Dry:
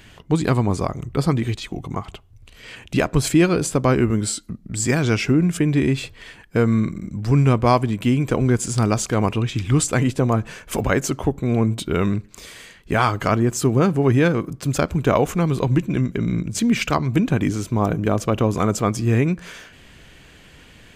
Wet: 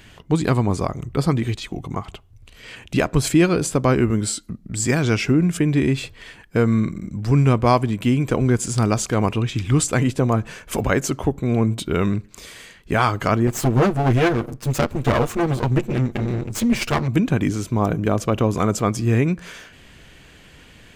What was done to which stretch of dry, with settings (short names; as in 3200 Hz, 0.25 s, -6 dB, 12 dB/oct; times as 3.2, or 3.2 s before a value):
13.47–17.08 minimum comb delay 8.5 ms